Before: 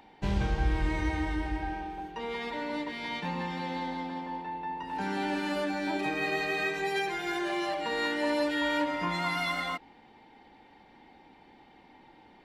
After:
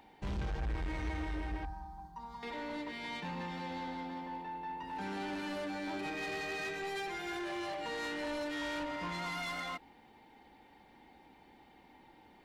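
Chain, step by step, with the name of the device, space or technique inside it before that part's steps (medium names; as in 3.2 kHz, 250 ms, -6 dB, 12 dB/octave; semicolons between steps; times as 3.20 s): 1.65–2.43 s: FFT filter 170 Hz 0 dB, 440 Hz -24 dB, 1 kHz +2 dB, 2.6 kHz -30 dB, 4.5 kHz -6 dB; open-reel tape (saturation -31 dBFS, distortion -10 dB; peaking EQ 61 Hz +4.5 dB 0.8 oct; white noise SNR 45 dB); trim -4 dB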